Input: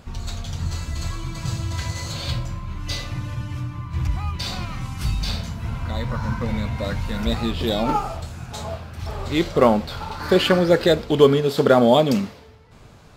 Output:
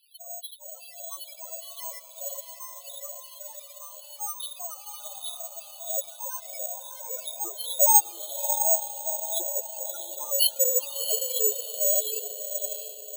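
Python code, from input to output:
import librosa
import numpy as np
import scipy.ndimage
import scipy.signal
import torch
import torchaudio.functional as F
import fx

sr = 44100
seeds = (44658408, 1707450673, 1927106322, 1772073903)

y = fx.octave_divider(x, sr, octaves=1, level_db=0.0)
y = scipy.signal.sosfilt(scipy.signal.butter(2, 110.0, 'highpass', fs=sr, output='sos'), y)
y = fx.low_shelf(y, sr, hz=150.0, db=-5.0)
y = fx.over_compress(y, sr, threshold_db=-19.0, ratio=-0.5)
y = fx.filter_lfo_highpass(y, sr, shape='square', hz=2.5, low_hz=610.0, high_hz=3100.0, q=3.3)
y = fx.spec_topn(y, sr, count=2)
y = fx.echo_diffused(y, sr, ms=667, feedback_pct=40, wet_db=-7.0)
y = (np.kron(scipy.signal.resample_poly(y, 1, 6), np.eye(6)[0]) * 6)[:len(y)]
y = F.gain(torch.from_numpy(y), -7.0).numpy()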